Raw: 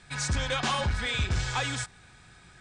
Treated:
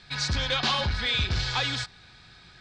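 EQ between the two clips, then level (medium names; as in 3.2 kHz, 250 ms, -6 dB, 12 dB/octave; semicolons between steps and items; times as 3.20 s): resonant low-pass 4.4 kHz, resonance Q 3.2; 0.0 dB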